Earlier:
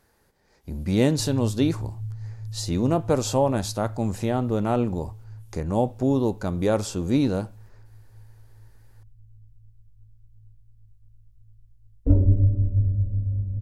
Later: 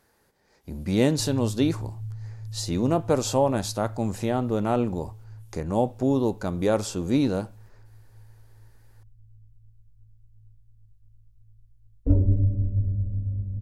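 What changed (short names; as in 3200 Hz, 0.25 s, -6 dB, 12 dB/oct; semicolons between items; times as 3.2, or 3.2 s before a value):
speech: add low shelf 88 Hz -8 dB; reverb: off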